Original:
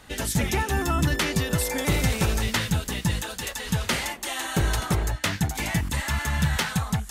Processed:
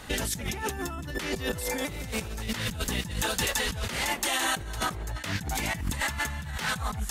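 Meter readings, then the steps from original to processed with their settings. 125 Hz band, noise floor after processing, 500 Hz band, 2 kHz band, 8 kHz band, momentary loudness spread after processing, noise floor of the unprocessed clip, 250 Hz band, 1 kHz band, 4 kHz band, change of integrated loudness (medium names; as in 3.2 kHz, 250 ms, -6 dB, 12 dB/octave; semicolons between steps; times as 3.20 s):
-10.0 dB, -38 dBFS, -3.5 dB, -2.5 dB, -2.5 dB, 7 LU, -40 dBFS, -7.5 dB, -3.0 dB, -2.0 dB, -4.5 dB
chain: compressor with a negative ratio -32 dBFS, ratio -1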